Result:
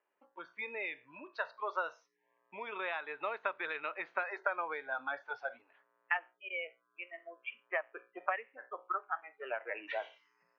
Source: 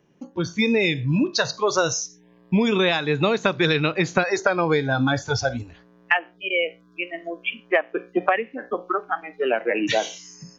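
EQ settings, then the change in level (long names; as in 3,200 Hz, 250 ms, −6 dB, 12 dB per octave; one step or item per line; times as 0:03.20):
high-frequency loss of the air 130 metres
loudspeaker in its box 380–2,200 Hz, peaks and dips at 400 Hz +3 dB, 610 Hz +7 dB, 930 Hz +7 dB, 1,300 Hz +5 dB
first difference
0.0 dB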